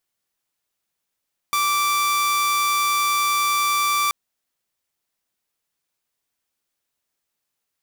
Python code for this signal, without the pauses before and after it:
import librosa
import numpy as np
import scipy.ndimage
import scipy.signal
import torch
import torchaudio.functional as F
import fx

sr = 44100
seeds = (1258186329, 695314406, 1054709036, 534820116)

y = 10.0 ** (-15.5 / 20.0) * (2.0 * np.mod(1170.0 * (np.arange(round(2.58 * sr)) / sr), 1.0) - 1.0)